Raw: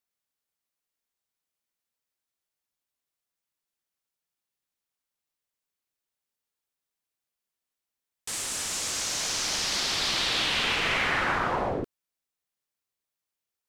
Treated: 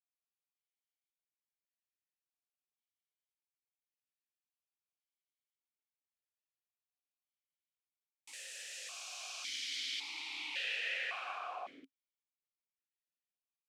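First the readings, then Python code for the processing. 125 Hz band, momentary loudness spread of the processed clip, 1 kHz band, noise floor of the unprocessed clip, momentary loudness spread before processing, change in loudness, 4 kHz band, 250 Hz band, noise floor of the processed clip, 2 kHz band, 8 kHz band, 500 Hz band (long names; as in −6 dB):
below −40 dB, 11 LU, −16.0 dB, below −85 dBFS, 8 LU, −13.5 dB, −13.5 dB, −26.0 dB, below −85 dBFS, −12.0 dB, −18.0 dB, −20.0 dB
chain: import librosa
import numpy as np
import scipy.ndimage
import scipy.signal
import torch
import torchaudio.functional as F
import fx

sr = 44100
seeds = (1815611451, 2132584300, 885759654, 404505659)

y = np.diff(x, prepend=0.0)
y = fx.vowel_held(y, sr, hz=1.8)
y = y * librosa.db_to_amplitude(10.5)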